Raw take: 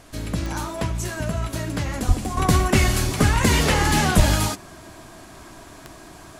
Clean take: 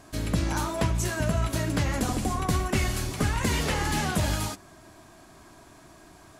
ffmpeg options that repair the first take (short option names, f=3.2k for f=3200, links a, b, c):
-filter_complex "[0:a]adeclick=t=4,asplit=3[a][b][c];[a]afade=t=out:st=2.07:d=0.02[d];[b]highpass=f=140:w=0.5412,highpass=f=140:w=1.3066,afade=t=in:st=2.07:d=0.02,afade=t=out:st=2.19:d=0.02[e];[c]afade=t=in:st=2.19:d=0.02[f];[d][e][f]amix=inputs=3:normalize=0,asplit=3[g][h][i];[g]afade=t=out:st=4.16:d=0.02[j];[h]highpass=f=140:w=0.5412,highpass=f=140:w=1.3066,afade=t=in:st=4.16:d=0.02,afade=t=out:st=4.28:d=0.02[k];[i]afade=t=in:st=4.28:d=0.02[l];[j][k][l]amix=inputs=3:normalize=0,agate=range=-21dB:threshold=-35dB,asetnsamples=n=441:p=0,asendcmd='2.37 volume volume -8dB',volume=0dB"